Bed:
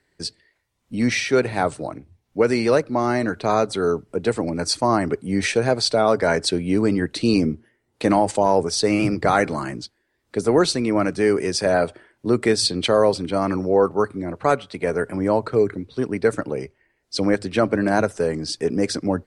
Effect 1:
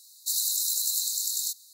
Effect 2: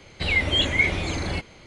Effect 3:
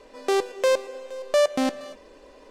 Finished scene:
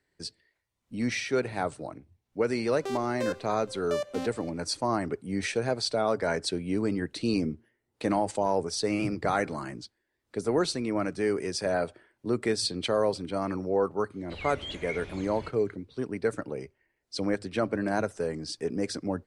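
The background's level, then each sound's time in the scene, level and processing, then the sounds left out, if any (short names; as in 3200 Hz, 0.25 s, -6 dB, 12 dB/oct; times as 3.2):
bed -9 dB
2.57 add 3 -12 dB
14.1 add 2 -17.5 dB
not used: 1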